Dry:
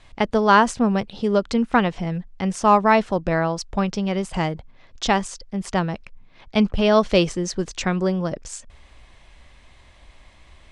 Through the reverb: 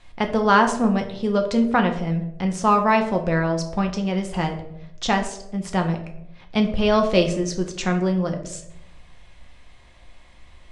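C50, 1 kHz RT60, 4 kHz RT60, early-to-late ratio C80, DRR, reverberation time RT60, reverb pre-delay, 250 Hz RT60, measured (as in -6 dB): 10.0 dB, 0.65 s, 0.45 s, 12.5 dB, 3.5 dB, 0.80 s, 4 ms, 0.95 s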